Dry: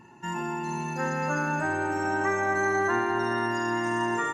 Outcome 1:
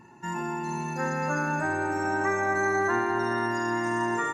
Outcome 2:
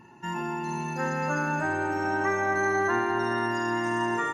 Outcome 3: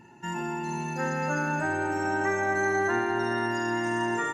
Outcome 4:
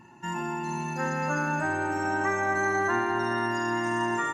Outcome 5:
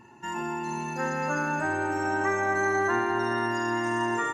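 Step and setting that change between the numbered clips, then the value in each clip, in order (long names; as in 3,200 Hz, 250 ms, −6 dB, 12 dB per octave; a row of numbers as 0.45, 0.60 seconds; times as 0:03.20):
notch filter, centre frequency: 3,000, 7,500, 1,100, 440, 170 Hertz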